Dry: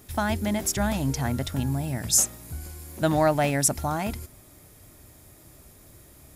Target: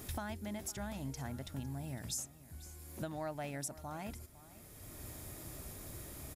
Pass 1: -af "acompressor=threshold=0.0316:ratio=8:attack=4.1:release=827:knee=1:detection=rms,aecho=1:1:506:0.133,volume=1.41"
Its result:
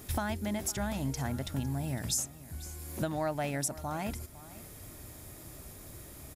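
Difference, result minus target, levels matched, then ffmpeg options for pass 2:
compression: peak gain reduction -8.5 dB
-af "acompressor=threshold=0.0106:ratio=8:attack=4.1:release=827:knee=1:detection=rms,aecho=1:1:506:0.133,volume=1.41"

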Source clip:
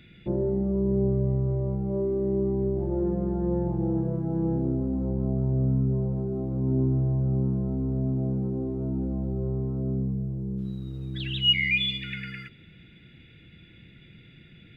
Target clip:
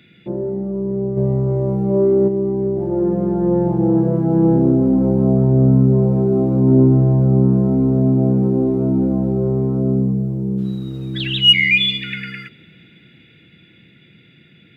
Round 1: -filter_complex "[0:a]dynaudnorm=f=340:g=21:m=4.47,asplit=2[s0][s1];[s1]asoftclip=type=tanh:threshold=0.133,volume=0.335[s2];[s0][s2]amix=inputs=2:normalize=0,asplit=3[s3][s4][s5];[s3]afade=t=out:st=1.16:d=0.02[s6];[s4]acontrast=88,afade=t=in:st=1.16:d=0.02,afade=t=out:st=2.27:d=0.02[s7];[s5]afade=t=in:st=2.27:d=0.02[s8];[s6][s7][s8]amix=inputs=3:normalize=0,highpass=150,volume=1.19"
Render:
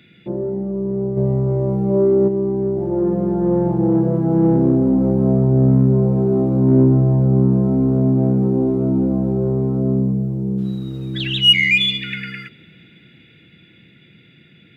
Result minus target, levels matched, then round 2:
saturation: distortion +10 dB
-filter_complex "[0:a]dynaudnorm=f=340:g=21:m=4.47,asplit=2[s0][s1];[s1]asoftclip=type=tanh:threshold=0.398,volume=0.335[s2];[s0][s2]amix=inputs=2:normalize=0,asplit=3[s3][s4][s5];[s3]afade=t=out:st=1.16:d=0.02[s6];[s4]acontrast=88,afade=t=in:st=1.16:d=0.02,afade=t=out:st=2.27:d=0.02[s7];[s5]afade=t=in:st=2.27:d=0.02[s8];[s6][s7][s8]amix=inputs=3:normalize=0,highpass=150,volume=1.19"

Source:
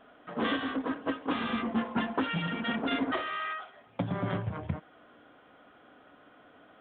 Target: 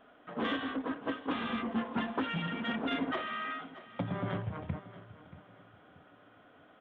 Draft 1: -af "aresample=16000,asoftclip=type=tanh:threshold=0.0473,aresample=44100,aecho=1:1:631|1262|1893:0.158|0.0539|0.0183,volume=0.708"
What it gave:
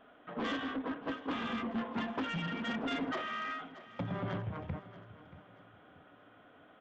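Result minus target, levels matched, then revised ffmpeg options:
saturation: distortion +16 dB
-af "aresample=16000,asoftclip=type=tanh:threshold=0.168,aresample=44100,aecho=1:1:631|1262|1893:0.158|0.0539|0.0183,volume=0.708"

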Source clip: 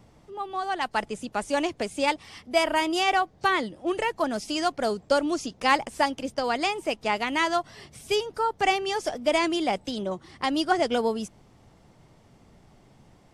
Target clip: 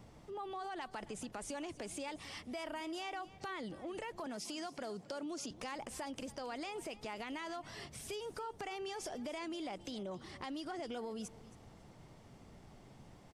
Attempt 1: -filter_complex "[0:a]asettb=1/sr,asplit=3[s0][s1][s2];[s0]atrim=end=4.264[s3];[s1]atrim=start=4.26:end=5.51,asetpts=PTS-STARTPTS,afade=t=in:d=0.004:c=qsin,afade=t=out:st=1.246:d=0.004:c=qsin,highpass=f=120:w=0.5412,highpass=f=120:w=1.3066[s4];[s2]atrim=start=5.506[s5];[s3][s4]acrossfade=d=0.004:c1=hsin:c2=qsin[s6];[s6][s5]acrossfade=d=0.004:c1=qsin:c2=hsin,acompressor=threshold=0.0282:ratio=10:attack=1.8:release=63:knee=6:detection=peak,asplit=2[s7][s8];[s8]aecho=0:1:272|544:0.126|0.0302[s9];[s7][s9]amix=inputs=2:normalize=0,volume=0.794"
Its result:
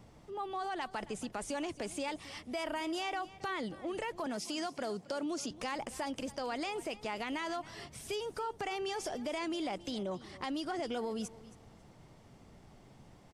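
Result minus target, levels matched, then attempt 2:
compression: peak gain reduction -6 dB
-filter_complex "[0:a]asettb=1/sr,asplit=3[s0][s1][s2];[s0]atrim=end=4.264[s3];[s1]atrim=start=4.26:end=5.51,asetpts=PTS-STARTPTS,afade=t=in:d=0.004:c=qsin,afade=t=out:st=1.246:d=0.004:c=qsin,highpass=f=120:w=0.5412,highpass=f=120:w=1.3066[s4];[s2]atrim=start=5.506[s5];[s3][s4]acrossfade=d=0.004:c1=hsin:c2=qsin[s6];[s6][s5]acrossfade=d=0.004:c1=qsin:c2=hsin,acompressor=threshold=0.0133:ratio=10:attack=1.8:release=63:knee=6:detection=peak,asplit=2[s7][s8];[s8]aecho=0:1:272|544:0.126|0.0302[s9];[s7][s9]amix=inputs=2:normalize=0,volume=0.794"

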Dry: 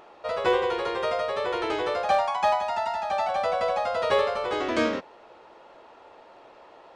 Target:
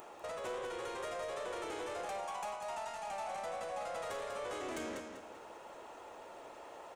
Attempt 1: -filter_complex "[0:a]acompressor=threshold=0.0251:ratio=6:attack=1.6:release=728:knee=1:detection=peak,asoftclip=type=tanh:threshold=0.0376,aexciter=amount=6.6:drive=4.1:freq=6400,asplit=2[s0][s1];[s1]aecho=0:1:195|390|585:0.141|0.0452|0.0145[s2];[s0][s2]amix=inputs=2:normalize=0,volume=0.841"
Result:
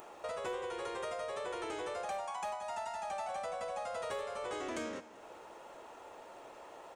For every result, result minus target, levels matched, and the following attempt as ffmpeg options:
echo-to-direct -11 dB; saturation: distortion -10 dB
-filter_complex "[0:a]acompressor=threshold=0.0251:ratio=6:attack=1.6:release=728:knee=1:detection=peak,asoftclip=type=tanh:threshold=0.0376,aexciter=amount=6.6:drive=4.1:freq=6400,asplit=2[s0][s1];[s1]aecho=0:1:195|390|585|780:0.501|0.16|0.0513|0.0164[s2];[s0][s2]amix=inputs=2:normalize=0,volume=0.841"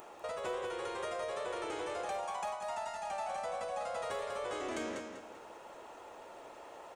saturation: distortion -10 dB
-filter_complex "[0:a]acompressor=threshold=0.0251:ratio=6:attack=1.6:release=728:knee=1:detection=peak,asoftclip=type=tanh:threshold=0.0158,aexciter=amount=6.6:drive=4.1:freq=6400,asplit=2[s0][s1];[s1]aecho=0:1:195|390|585|780:0.501|0.16|0.0513|0.0164[s2];[s0][s2]amix=inputs=2:normalize=0,volume=0.841"

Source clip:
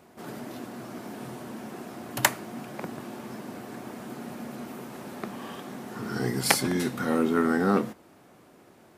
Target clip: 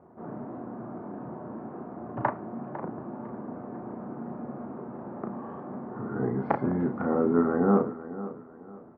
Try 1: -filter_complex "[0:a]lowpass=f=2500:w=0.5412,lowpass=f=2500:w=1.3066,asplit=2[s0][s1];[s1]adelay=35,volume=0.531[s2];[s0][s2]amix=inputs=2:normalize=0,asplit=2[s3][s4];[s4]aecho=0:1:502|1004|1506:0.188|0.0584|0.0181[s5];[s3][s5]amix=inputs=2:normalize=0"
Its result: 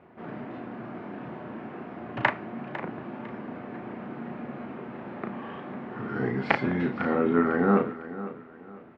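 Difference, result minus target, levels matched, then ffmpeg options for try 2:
2 kHz band +10.5 dB
-filter_complex "[0:a]lowpass=f=1200:w=0.5412,lowpass=f=1200:w=1.3066,asplit=2[s0][s1];[s1]adelay=35,volume=0.531[s2];[s0][s2]amix=inputs=2:normalize=0,asplit=2[s3][s4];[s4]aecho=0:1:502|1004|1506:0.188|0.0584|0.0181[s5];[s3][s5]amix=inputs=2:normalize=0"

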